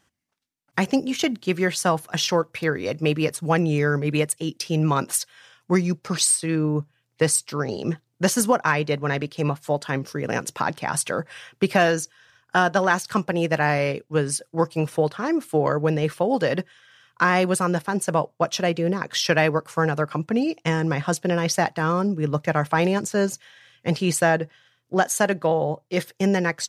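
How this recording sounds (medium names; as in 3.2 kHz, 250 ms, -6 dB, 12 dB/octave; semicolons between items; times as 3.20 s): noise floor -72 dBFS; spectral tilt -4.5 dB/octave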